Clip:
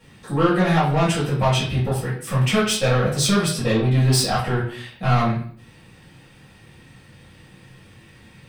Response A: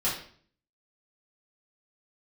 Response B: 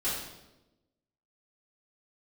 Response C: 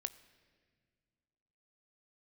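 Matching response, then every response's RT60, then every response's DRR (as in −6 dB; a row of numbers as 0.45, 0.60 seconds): A; 0.50 s, 1.0 s, non-exponential decay; −9.5, −12.0, 12.5 decibels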